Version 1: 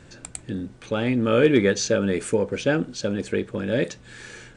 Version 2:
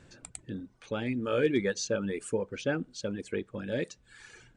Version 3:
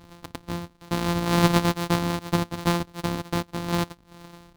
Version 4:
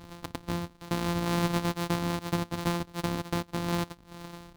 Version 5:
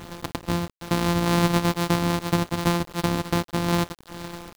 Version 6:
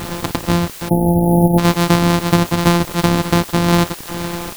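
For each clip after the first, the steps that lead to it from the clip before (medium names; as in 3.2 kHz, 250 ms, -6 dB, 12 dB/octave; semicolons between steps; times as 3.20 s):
reverb removal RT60 1.1 s; trim -8 dB
sorted samples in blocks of 256 samples; fifteen-band graphic EQ 100 Hz +3 dB, 250 Hz +8 dB, 1 kHz +6 dB, 4 kHz +5 dB; trim +4 dB
compression 2.5:1, threshold -30 dBFS, peak gain reduction 11 dB; saturation -17.5 dBFS, distortion -24 dB; trim +2 dB
bit crusher 8-bit; trim +7 dB
jump at every zero crossing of -30 dBFS; spectral selection erased 0.89–1.59 s, 920–9600 Hz; trim +8 dB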